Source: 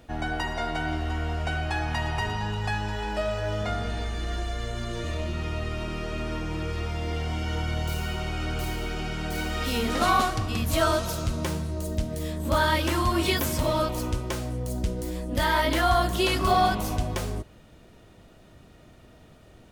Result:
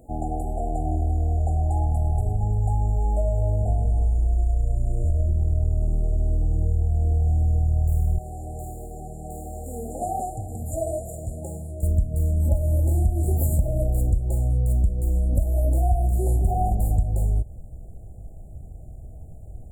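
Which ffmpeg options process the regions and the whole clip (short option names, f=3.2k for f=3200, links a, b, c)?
-filter_complex "[0:a]asettb=1/sr,asplit=3[a][b][c];[a]atrim=end=8.184[d];[b]atrim=start=8.18:end=11.83,asetpts=PTS-STARTPTS,afade=t=in:d=0.004:c=qsin,afade=t=out:st=3.646:d=0.004:c=qsin,acrossover=split=8500[e][f];[f]acompressor=threshold=-53dB:ratio=4:attack=1:release=60[g];[e][g]amix=inputs=2:normalize=0,highpass=f=600:p=1[h];[c]atrim=start=11.826[i];[d][h]acrossfade=d=0.004:c1=hsin:c2=qsin[j];[j][i]acrossfade=d=0.004:c1=qsin:c2=hsin,afftfilt=real='re*(1-between(b*sr/4096,850,6900))':imag='im*(1-between(b*sr/4096,850,6900))':win_size=4096:overlap=0.75,asubboost=boost=7.5:cutoff=96,acompressor=threshold=-20dB:ratio=5,volume=2.5dB"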